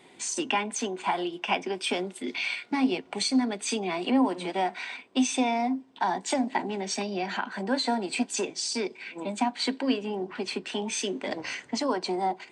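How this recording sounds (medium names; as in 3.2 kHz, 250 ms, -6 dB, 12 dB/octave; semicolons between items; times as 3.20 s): noise floor -54 dBFS; spectral tilt -3.0 dB/octave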